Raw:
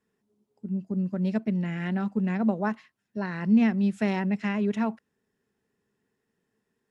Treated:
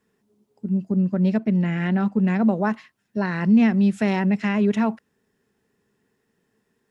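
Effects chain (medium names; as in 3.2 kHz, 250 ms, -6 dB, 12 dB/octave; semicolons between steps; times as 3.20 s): 0.92–2.27 s: treble shelf 4.6 kHz -6 dB; in parallel at +2.5 dB: peak limiter -20.5 dBFS, peak gain reduction 8 dB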